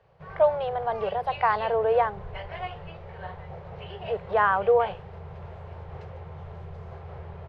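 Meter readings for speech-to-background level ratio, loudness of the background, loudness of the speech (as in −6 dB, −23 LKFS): 15.5 dB, −40.5 LKFS, −25.0 LKFS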